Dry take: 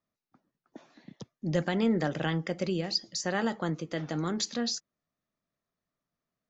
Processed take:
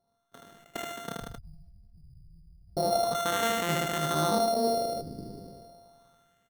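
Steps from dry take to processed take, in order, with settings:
samples sorted by size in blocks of 64 samples
0:01.15–0:02.77: inverse Chebyshev band-stop filter 230–4,500 Hz, stop band 60 dB
in parallel at +1.5 dB: downward compressor, threshold −43 dBFS, peak gain reduction 18 dB
on the sum: brickwall limiter −24 dBFS, peak gain reduction 8.5 dB
auto-filter low-pass sine 0.34 Hz 350–2,000 Hz
repeating echo 77 ms, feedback 18%, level −6.5 dB
decimation without filtering 9×
level that may fall only so fast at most 26 dB per second
level +1.5 dB

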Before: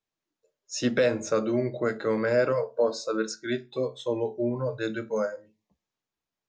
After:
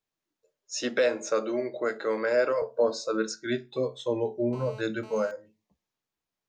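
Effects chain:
0:00.81–0:02.62: high-pass filter 360 Hz 12 dB per octave
0:04.53–0:05.31: phone interference −47 dBFS

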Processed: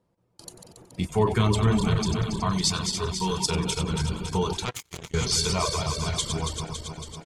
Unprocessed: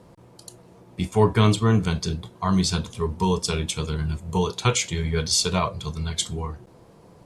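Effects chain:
feedback delay that plays each chunk backwards 139 ms, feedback 79%, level −7 dB
in parallel at +3 dB: brickwall limiter −16 dBFS, peak gain reduction 11 dB
0:02.51–0:03.46: on the sum: tilt shelving filter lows −4.5 dB, about 1,300 Hz
on a send: echo with shifted repeats 93 ms, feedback 49%, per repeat −31 Hz, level −11.5 dB
0:04.65–0:05.14: on the sum: power curve on the samples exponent 3
reverb reduction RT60 0.51 s
noise gate with hold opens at −29 dBFS
level −8 dB

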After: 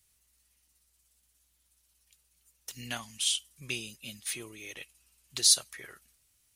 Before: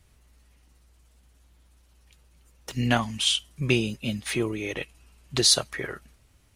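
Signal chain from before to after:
first-order pre-emphasis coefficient 0.9

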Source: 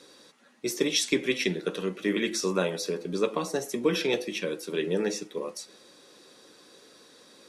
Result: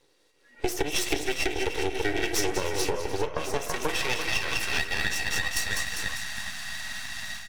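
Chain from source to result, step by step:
low-shelf EQ 230 Hz −10.5 dB
echo with a time of its own for lows and highs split 1,900 Hz, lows 331 ms, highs 200 ms, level −6 dB
high-pass filter sweep 440 Hz → 1,700 Hz, 0:02.87–0:05.20
automatic gain control gain up to 16 dB
hollow resonant body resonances 290/1,900/2,700 Hz, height 14 dB, ringing for 25 ms
downward compressor 16 to 1, threshold −21 dBFS, peak gain reduction 21 dB
high-shelf EQ 3,100 Hz +6.5 dB, from 0:01.77 +11.5 dB, from 0:02.93 +2.5 dB
half-wave rectification
repeating echo 300 ms, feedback 26%, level −16 dB
noise reduction from a noise print of the clip's start 16 dB

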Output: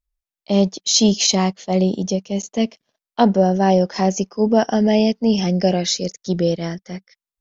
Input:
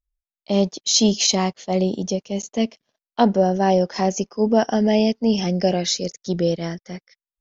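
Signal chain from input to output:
dynamic equaliser 190 Hz, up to +3 dB, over −37 dBFS, Q 7.2
level +1.5 dB

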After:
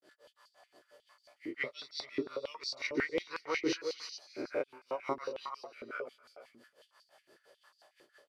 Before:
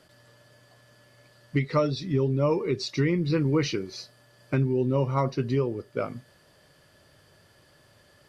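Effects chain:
peak hold with a rise ahead of every peak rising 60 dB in 0.43 s
granular cloud 170 ms, grains 5.8 per second, pitch spread up and down by 0 semitones
multi-tap delay 351/425/434 ms −13/−16/−19 dB
high-pass on a step sequencer 11 Hz 340–4,700 Hz
level −6.5 dB

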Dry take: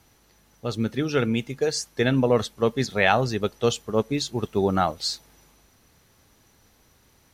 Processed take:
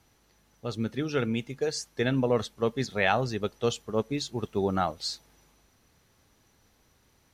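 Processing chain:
high-shelf EQ 11,000 Hz −5.5 dB
level −5 dB

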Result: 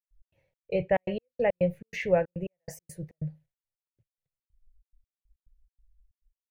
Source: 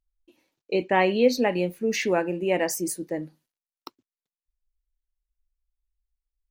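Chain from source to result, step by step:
drawn EQ curve 150 Hz 0 dB, 270 Hz −30 dB, 550 Hz −2 dB, 1,100 Hz −19 dB, 2,000 Hz −8 dB, 4,400 Hz −22 dB
gate pattern ".x.xx.xxx.x." 140 BPM −60 dB
low-shelf EQ 200 Hz +12 dB
level +5 dB

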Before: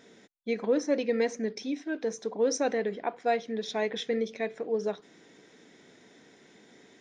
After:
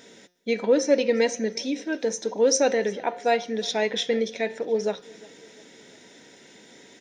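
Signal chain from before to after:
high-shelf EQ 2,900 Hz +8.5 dB
notch filter 1,100 Hz, Q 7.4
hum removal 178.4 Hz, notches 37
hollow resonant body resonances 540/950/2,800 Hz, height 6 dB
on a send: repeating echo 353 ms, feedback 51%, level −23.5 dB
on the sum: level +4 dB

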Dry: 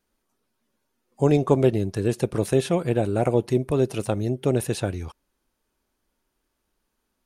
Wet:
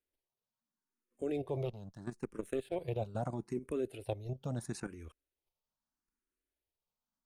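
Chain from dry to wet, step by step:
0:01.65–0:02.76: power curve on the samples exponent 1.4
output level in coarse steps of 12 dB
frequency shifter mixed with the dry sound +0.77 Hz
level −8 dB

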